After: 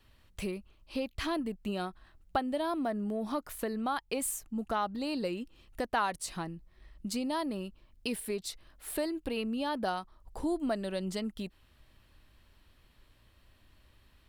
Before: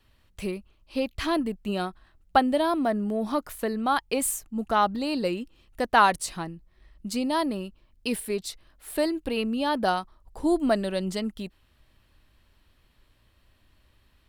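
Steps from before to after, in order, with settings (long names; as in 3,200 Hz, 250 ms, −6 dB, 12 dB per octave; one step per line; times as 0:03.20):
downward compressor 2 to 1, threshold −36 dBFS, peak gain reduction 12.5 dB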